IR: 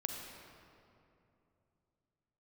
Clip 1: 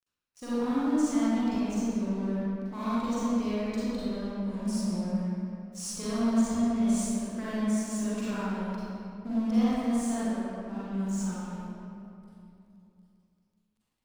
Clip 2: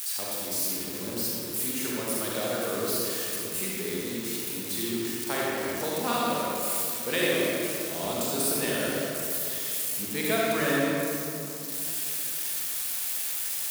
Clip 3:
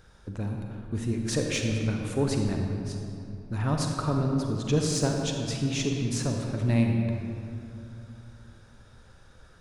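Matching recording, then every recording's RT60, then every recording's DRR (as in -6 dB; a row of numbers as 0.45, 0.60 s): 3; 2.8, 2.8, 2.8 s; -11.0, -5.5, 2.0 dB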